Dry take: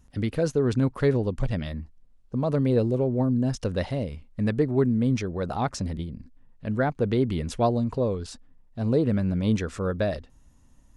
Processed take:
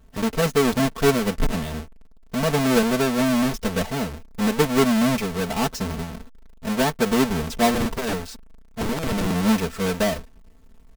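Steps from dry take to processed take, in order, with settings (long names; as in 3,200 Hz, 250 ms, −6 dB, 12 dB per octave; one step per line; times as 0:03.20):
each half-wave held at its own peak
comb filter 4.5 ms, depth 89%
0:07.74–0:09.31: wrap-around overflow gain 17 dB
level −2.5 dB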